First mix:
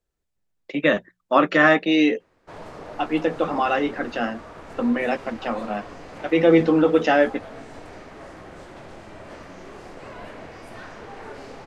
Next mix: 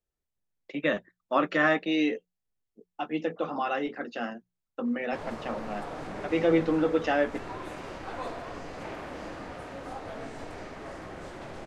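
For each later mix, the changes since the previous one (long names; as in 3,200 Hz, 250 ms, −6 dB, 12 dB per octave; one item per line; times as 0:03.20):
speech −8.0 dB
background: entry +2.65 s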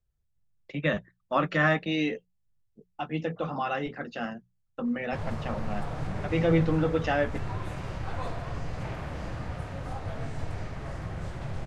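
master: add low shelf with overshoot 190 Hz +12.5 dB, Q 1.5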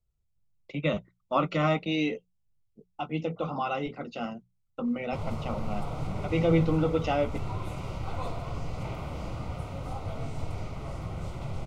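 background: remove low-pass filter 11,000 Hz 12 dB per octave
master: add Butterworth band-reject 1,700 Hz, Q 3.1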